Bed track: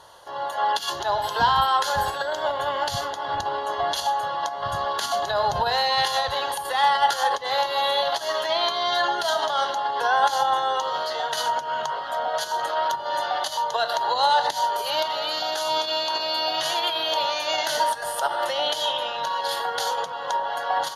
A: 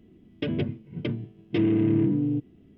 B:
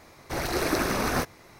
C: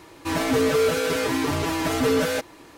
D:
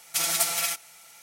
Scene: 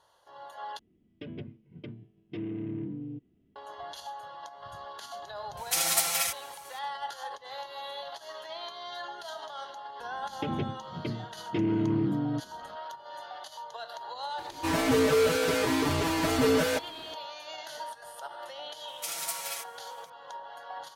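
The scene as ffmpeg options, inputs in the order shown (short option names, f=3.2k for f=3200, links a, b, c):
-filter_complex "[1:a]asplit=2[a][b];[4:a]asplit=2[c][d];[0:a]volume=-17dB[e];[d]highpass=f=310:p=1[f];[e]asplit=2[g][h];[g]atrim=end=0.794[i];[a]atrim=end=2.77,asetpts=PTS-STARTPTS,volume=-13.5dB[j];[h]atrim=start=3.556[k];[c]atrim=end=1.22,asetpts=PTS-STARTPTS,volume=-1.5dB,afade=t=in:d=0.004:c=hsin,afade=t=out:st=1.216:d=0.004:c=hsin,adelay=245637S[l];[b]atrim=end=2.77,asetpts=PTS-STARTPTS,volume=-5dB,afade=t=in:d=0.004:c=hsin,afade=t=out:st=2.766:d=0.004:c=hsin,adelay=10000[m];[3:a]atrim=end=2.77,asetpts=PTS-STARTPTS,volume=-3dB,afade=t=in:d=0.004:c=hsin,afade=t=out:st=2.766:d=0.004:c=hsin,adelay=14380[n];[f]atrim=end=1.22,asetpts=PTS-STARTPTS,volume=-10dB,afade=t=in:d=0.004:c=hsin,afade=t=out:st=1.216:d=0.004:c=hsin,adelay=18880[o];[i][j]acrossfade=d=0.004:c1=hsin:c2=hsin[p];[p][k]acrossfade=d=0.004:c1=hsin:c2=hsin[q];[q][l][m][n][o]amix=inputs=5:normalize=0"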